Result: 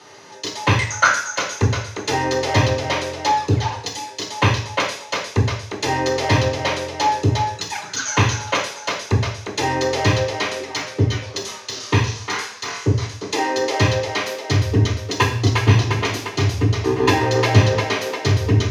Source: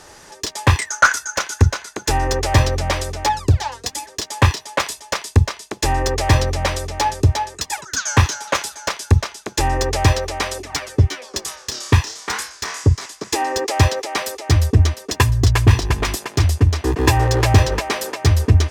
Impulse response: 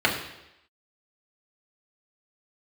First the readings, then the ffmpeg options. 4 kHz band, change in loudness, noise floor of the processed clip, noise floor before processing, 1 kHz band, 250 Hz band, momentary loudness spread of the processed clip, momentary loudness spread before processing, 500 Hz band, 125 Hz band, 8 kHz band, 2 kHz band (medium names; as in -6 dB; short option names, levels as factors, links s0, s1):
+0.5 dB, -1.0 dB, -37 dBFS, -44 dBFS, 0.0 dB, +1.5 dB, 9 LU, 10 LU, +2.0 dB, -2.5 dB, -3.0 dB, +0.5 dB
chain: -filter_complex "[0:a]highpass=82[s0];[1:a]atrim=start_sample=2205,asetrate=61740,aresample=44100[s1];[s0][s1]afir=irnorm=-1:irlink=0,volume=0.237"